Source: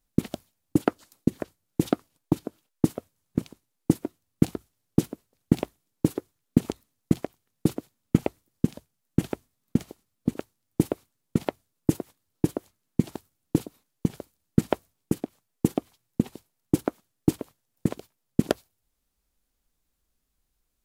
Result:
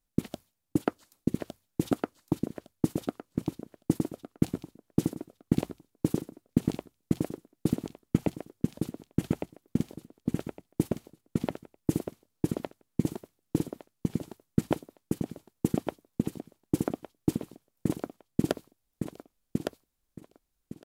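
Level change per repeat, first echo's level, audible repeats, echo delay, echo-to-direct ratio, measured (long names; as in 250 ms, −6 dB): −13.0 dB, −4.0 dB, 3, 1,160 ms, −4.0 dB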